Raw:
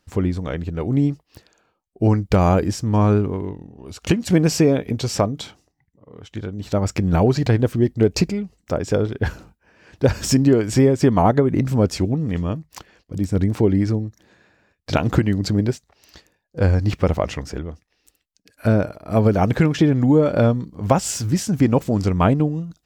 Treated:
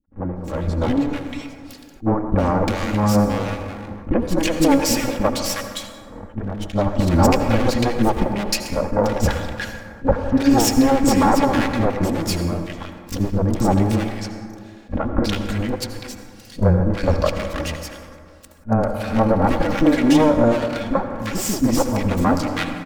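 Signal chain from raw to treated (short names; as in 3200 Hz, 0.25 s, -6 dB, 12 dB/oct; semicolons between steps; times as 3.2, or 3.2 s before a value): minimum comb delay 3.6 ms; AGC; three bands offset in time lows, mids, highs 40/360 ms, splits 340/1500 Hz; on a send at -7 dB: reverb RT60 2.3 s, pre-delay 68 ms; on the sum: attack slew limiter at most 360 dB/s; gain -1.5 dB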